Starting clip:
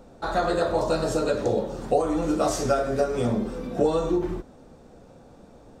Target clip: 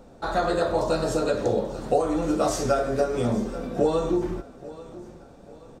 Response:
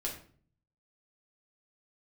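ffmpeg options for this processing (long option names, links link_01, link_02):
-af "aecho=1:1:836|1672|2508:0.126|0.0516|0.0212"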